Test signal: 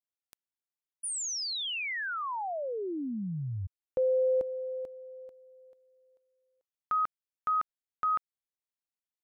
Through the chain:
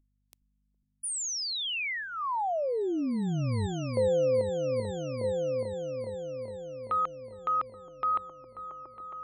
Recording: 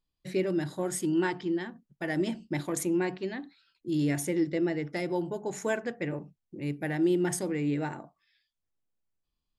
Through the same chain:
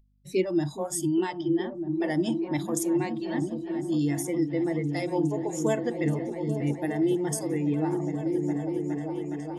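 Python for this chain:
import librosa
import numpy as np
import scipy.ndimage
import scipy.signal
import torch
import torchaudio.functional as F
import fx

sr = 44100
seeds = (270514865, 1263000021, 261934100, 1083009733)

p1 = fx.add_hum(x, sr, base_hz=50, snr_db=24)
p2 = fx.noise_reduce_blind(p1, sr, reduce_db=18)
p3 = fx.peak_eq(p2, sr, hz=1500.0, db=-12.5, octaves=0.52)
p4 = p3 + fx.echo_opening(p3, sr, ms=414, hz=200, octaves=1, feedback_pct=70, wet_db=-3, dry=0)
p5 = fx.rider(p4, sr, range_db=3, speed_s=0.5)
y = F.gain(torch.from_numpy(p5), 4.0).numpy()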